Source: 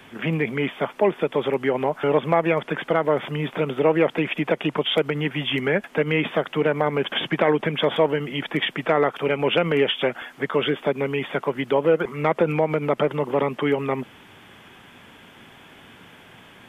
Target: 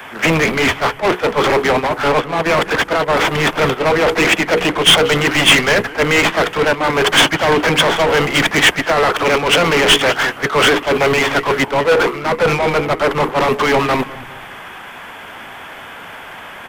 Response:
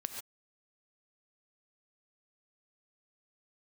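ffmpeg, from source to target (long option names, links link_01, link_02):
-filter_complex "[0:a]acrossover=split=550 2100:gain=0.224 1 0.251[link_01][link_02][link_03];[link_01][link_02][link_03]amix=inputs=3:normalize=0,bandreject=frequency=60:width_type=h:width=6,bandreject=frequency=120:width_type=h:width=6,bandreject=frequency=180:width_type=h:width=6,bandreject=frequency=240:width_type=h:width=6,bandreject=frequency=300:width_type=h:width=6,bandreject=frequency=360:width_type=h:width=6,bandreject=frequency=420:width_type=h:width=6,bandreject=frequency=480:width_type=h:width=6,areverse,acompressor=threshold=-28dB:ratio=6,areverse,apsyclip=36dB,asplit=2[link_04][link_05];[link_05]asplit=4[link_06][link_07][link_08][link_09];[link_06]adelay=207,afreqshift=-140,volume=-9dB[link_10];[link_07]adelay=414,afreqshift=-280,volume=-18.4dB[link_11];[link_08]adelay=621,afreqshift=-420,volume=-27.7dB[link_12];[link_09]adelay=828,afreqshift=-560,volume=-37.1dB[link_13];[link_10][link_11][link_12][link_13]amix=inputs=4:normalize=0[link_14];[link_04][link_14]amix=inputs=2:normalize=0,acontrast=41,crystalizer=i=1:c=0,agate=range=-26dB:threshold=-1dB:ratio=16:detection=peak,volume=3.5dB"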